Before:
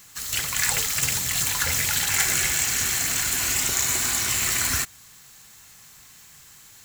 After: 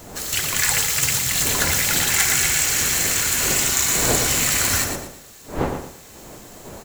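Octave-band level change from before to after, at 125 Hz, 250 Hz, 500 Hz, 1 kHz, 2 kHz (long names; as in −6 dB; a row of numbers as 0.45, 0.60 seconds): +6.0, +10.0, +12.0, +5.5, +4.0 decibels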